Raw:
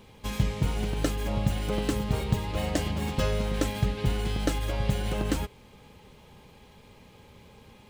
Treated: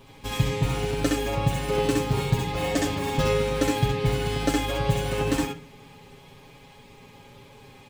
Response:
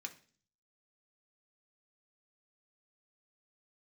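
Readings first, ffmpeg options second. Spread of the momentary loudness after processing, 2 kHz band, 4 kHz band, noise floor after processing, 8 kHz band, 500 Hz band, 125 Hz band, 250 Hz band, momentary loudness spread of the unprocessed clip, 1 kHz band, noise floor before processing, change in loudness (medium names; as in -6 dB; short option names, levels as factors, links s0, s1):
3 LU, +6.0 dB, +5.0 dB, -50 dBFS, +5.0 dB, +7.0 dB, +2.5 dB, +3.5 dB, 2 LU, +7.0 dB, -54 dBFS, +4.0 dB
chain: -filter_complex "[0:a]aecho=1:1:7.3:0.81,asplit=2[s0][s1];[1:a]atrim=start_sample=2205,adelay=65[s2];[s1][s2]afir=irnorm=-1:irlink=0,volume=1.41[s3];[s0][s3]amix=inputs=2:normalize=0"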